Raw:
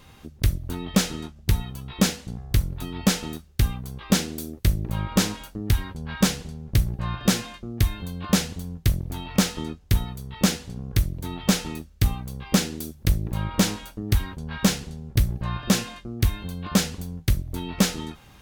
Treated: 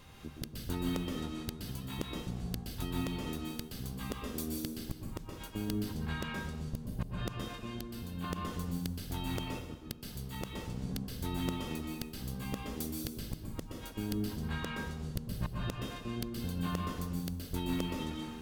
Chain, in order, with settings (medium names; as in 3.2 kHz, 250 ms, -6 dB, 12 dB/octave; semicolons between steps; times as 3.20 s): 7.50–8.24 s: compression 3:1, threshold -35 dBFS, peak gain reduction 14.5 dB; inverted gate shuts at -18 dBFS, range -37 dB; reverberation RT60 1.0 s, pre-delay 117 ms, DRR -0.5 dB; trim -5 dB